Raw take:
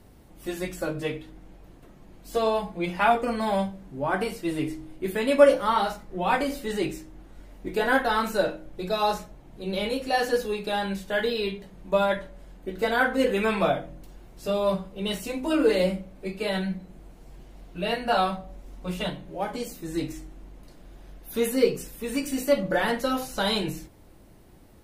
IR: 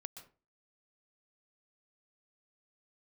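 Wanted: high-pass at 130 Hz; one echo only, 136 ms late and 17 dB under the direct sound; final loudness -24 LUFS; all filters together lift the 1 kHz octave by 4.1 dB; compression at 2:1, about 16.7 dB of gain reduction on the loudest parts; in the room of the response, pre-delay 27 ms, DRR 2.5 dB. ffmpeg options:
-filter_complex "[0:a]highpass=130,equalizer=f=1000:t=o:g=5.5,acompressor=threshold=0.00891:ratio=2,aecho=1:1:136:0.141,asplit=2[s0][s1];[1:a]atrim=start_sample=2205,adelay=27[s2];[s1][s2]afir=irnorm=-1:irlink=0,volume=1.26[s3];[s0][s3]amix=inputs=2:normalize=0,volume=3.55"

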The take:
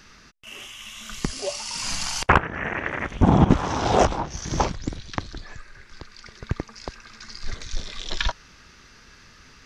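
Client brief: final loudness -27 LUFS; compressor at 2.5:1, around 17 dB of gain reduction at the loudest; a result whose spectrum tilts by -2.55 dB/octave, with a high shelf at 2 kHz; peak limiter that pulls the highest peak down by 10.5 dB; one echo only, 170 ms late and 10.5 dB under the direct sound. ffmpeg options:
-af "highshelf=f=2000:g=5.5,acompressor=threshold=0.0141:ratio=2.5,alimiter=level_in=1.06:limit=0.0631:level=0:latency=1,volume=0.944,aecho=1:1:170:0.299,volume=3.55"

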